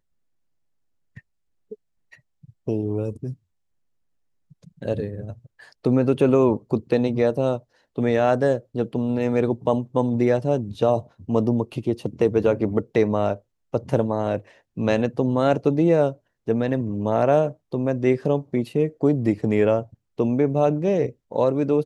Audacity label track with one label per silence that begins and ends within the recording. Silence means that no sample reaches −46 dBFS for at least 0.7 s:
3.340000	4.510000	silence